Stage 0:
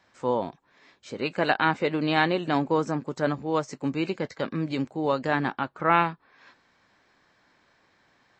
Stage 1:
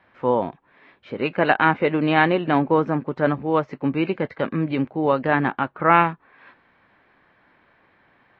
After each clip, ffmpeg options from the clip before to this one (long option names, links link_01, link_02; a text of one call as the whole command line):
ffmpeg -i in.wav -af "lowpass=frequency=2900:width=0.5412,lowpass=frequency=2900:width=1.3066,volume=5.5dB" out.wav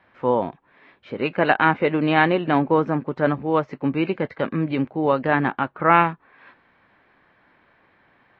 ffmpeg -i in.wav -af anull out.wav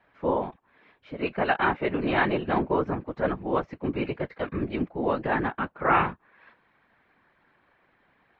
ffmpeg -i in.wav -af "afftfilt=real='hypot(re,im)*cos(2*PI*random(0))':imag='hypot(re,im)*sin(2*PI*random(1))':win_size=512:overlap=0.75" out.wav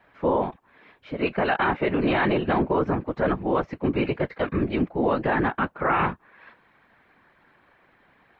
ffmpeg -i in.wav -af "alimiter=limit=-19dB:level=0:latency=1:release=21,volume=5.5dB" out.wav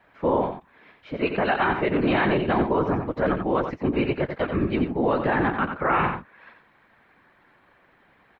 ffmpeg -i in.wav -af "aecho=1:1:89:0.422" out.wav